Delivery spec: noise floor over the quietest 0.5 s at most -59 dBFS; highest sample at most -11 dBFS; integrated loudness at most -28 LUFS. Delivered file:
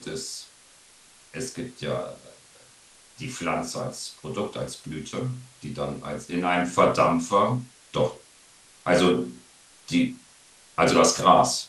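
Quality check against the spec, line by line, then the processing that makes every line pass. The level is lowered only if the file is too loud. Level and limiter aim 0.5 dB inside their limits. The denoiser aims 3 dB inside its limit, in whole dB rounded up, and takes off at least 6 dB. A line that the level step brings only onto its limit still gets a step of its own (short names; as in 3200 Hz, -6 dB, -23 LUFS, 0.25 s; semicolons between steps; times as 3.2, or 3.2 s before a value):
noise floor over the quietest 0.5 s -54 dBFS: fail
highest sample -4.0 dBFS: fail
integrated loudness -25.0 LUFS: fail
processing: denoiser 6 dB, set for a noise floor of -54 dBFS; gain -3.5 dB; limiter -11.5 dBFS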